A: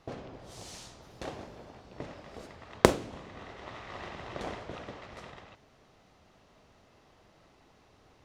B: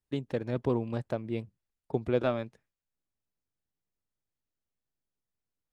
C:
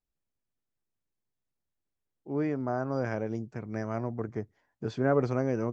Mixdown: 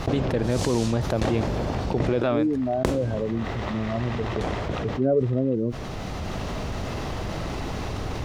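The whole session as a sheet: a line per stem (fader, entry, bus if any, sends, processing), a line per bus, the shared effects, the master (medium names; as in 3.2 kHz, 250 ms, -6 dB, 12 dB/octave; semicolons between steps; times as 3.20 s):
+0.5 dB, 0.00 s, no send, bass shelf 190 Hz +10.5 dB; auto duck -13 dB, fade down 0.20 s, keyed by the third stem
-1.0 dB, 0.00 s, no send, peak limiter -21 dBFS, peak gain reduction 7 dB
+1.0 dB, 0.00 s, no send, spectral contrast expander 2.5:1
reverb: none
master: level flattener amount 70%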